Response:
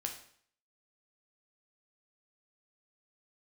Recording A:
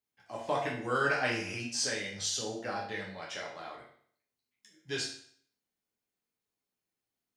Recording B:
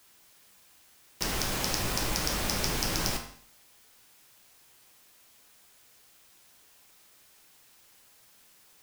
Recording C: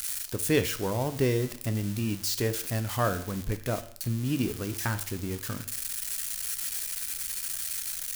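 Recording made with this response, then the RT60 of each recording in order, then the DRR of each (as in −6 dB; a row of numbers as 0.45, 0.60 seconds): B; 0.55, 0.55, 0.55 seconds; −4.0, 2.5, 9.0 decibels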